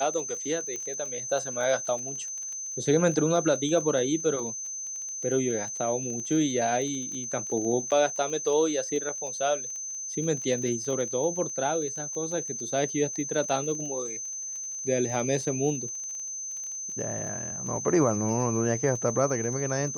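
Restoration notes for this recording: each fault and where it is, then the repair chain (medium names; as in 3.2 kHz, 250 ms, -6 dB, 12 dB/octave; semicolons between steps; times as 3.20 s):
crackle 21 per s -34 dBFS
whine 6.2 kHz -33 dBFS
0.76 s: pop -22 dBFS
7.91–7.92 s: dropout 7.9 ms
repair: de-click; band-stop 6.2 kHz, Q 30; interpolate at 7.91 s, 7.9 ms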